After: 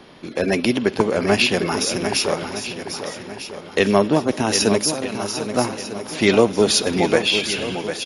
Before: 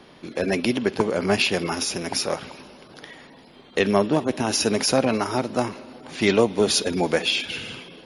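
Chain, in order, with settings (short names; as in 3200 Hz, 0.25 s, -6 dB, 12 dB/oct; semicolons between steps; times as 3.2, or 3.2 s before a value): downsampling 32000 Hz; 4.78–5.54 pre-emphasis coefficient 0.8; swung echo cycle 1.249 s, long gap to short 1.5:1, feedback 31%, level -9 dB; gain +3.5 dB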